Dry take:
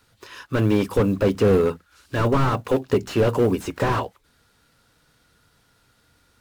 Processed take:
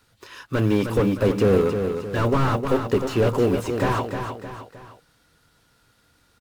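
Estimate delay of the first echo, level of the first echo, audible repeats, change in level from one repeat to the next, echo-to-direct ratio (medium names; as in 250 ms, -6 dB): 309 ms, -7.0 dB, 3, -7.0 dB, -6.0 dB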